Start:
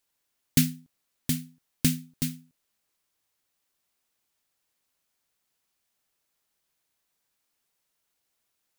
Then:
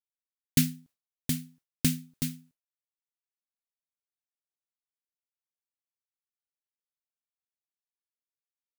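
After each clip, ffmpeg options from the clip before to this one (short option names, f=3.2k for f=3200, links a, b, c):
-af "agate=range=-33dB:threshold=-50dB:ratio=3:detection=peak,volume=-2dB"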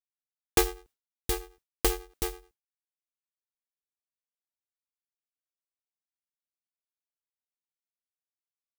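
-af "aeval=exprs='val(0)*sgn(sin(2*PI*200*n/s))':c=same"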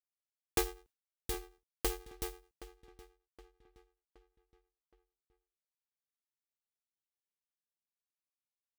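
-filter_complex "[0:a]asplit=2[a][b];[b]adelay=770,lowpass=f=4k:p=1,volume=-16dB,asplit=2[c][d];[d]adelay=770,lowpass=f=4k:p=1,volume=0.46,asplit=2[e][f];[f]adelay=770,lowpass=f=4k:p=1,volume=0.46,asplit=2[g][h];[h]adelay=770,lowpass=f=4k:p=1,volume=0.46[i];[a][c][e][g][i]amix=inputs=5:normalize=0,volume=-8.5dB"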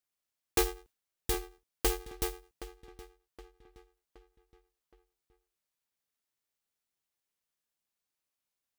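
-af "asoftclip=type=hard:threshold=-27dB,volume=6.5dB"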